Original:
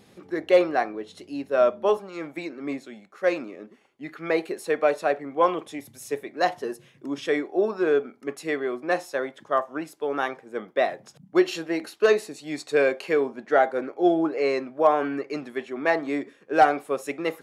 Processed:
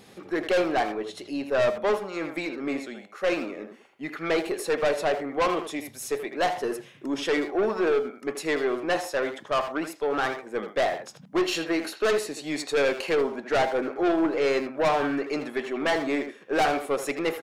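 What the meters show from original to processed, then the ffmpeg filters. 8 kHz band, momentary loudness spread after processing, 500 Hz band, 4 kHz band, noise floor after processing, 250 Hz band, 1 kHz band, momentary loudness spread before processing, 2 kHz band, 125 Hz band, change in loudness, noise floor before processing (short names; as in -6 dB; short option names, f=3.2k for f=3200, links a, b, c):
+5.5 dB, 8 LU, -2.0 dB, +4.5 dB, -51 dBFS, -0.5 dB, -2.5 dB, 14 LU, 0.0 dB, +1.5 dB, -1.5 dB, -57 dBFS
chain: -filter_complex "[0:a]lowshelf=f=340:g=-5,aeval=exprs='(tanh(17.8*val(0)+0.15)-tanh(0.15))/17.8':c=same,asplit=2[a][b];[b]adelay=80,highpass=300,lowpass=3.4k,asoftclip=type=hard:threshold=-32dB,volume=-6dB[c];[a][c]amix=inputs=2:normalize=0,volume=5.5dB"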